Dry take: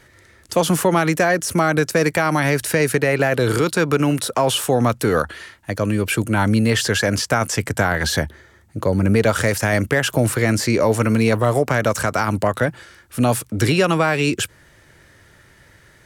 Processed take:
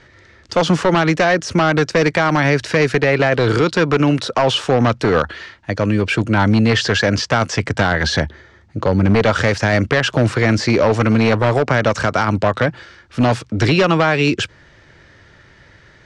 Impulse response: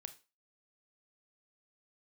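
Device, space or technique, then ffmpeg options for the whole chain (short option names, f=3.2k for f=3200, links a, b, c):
synthesiser wavefolder: -af "aeval=exprs='0.316*(abs(mod(val(0)/0.316+3,4)-2)-1)':c=same,lowpass=f=5.6k:w=0.5412,lowpass=f=5.6k:w=1.3066,volume=3.5dB"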